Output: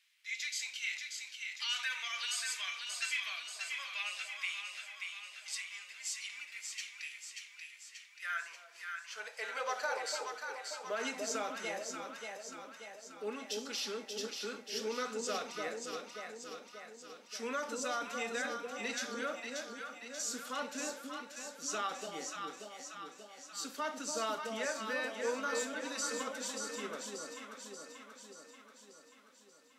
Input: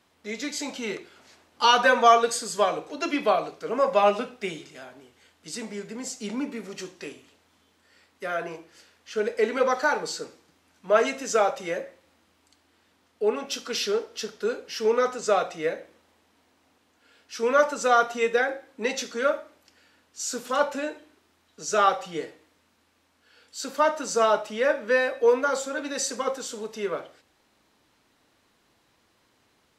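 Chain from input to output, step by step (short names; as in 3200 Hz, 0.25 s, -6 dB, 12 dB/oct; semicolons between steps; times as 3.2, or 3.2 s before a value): passive tone stack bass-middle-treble 5-5-5; limiter -29.5 dBFS, peak gain reduction 10.5 dB; high-pass sweep 2200 Hz -> 240 Hz, 7.81–11.14; echo with dull and thin repeats by turns 0.292 s, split 830 Hz, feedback 76%, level -2.5 dB; gain +1 dB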